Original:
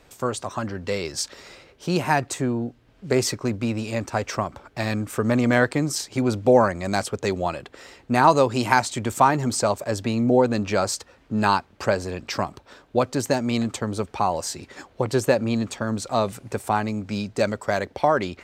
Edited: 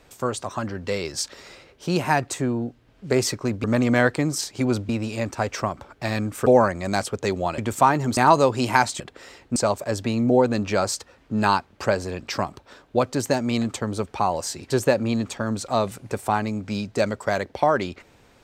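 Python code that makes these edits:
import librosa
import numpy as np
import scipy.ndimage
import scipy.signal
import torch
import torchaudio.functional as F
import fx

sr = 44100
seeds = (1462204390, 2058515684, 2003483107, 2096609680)

y = fx.edit(x, sr, fx.move(start_s=5.21, length_s=1.25, to_s=3.64),
    fx.swap(start_s=7.58, length_s=0.56, other_s=8.97, other_length_s=0.59),
    fx.cut(start_s=14.7, length_s=0.41), tone=tone)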